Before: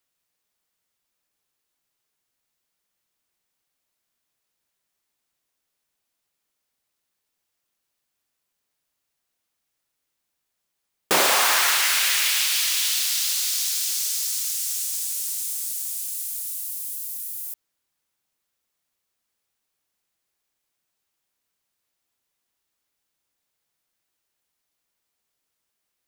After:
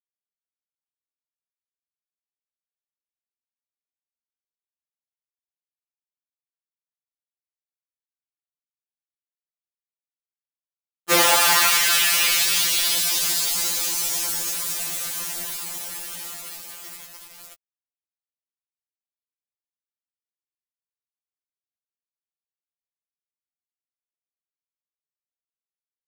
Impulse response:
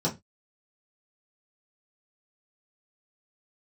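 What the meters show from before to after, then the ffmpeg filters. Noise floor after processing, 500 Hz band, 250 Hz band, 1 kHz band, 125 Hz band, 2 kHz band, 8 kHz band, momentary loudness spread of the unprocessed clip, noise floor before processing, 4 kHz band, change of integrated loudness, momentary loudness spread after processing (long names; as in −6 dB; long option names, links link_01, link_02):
below −85 dBFS, +2.5 dB, +5.0 dB, +2.5 dB, can't be measured, +2.0 dB, +1.0 dB, 12 LU, −79 dBFS, +1.5 dB, +2.5 dB, 19 LU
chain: -af "aeval=exprs='val(0)*gte(abs(val(0)),0.0668)':channel_layout=same,afftfilt=real='re*2.83*eq(mod(b,8),0)':imag='im*2.83*eq(mod(b,8),0)':win_size=2048:overlap=0.75,volume=5dB"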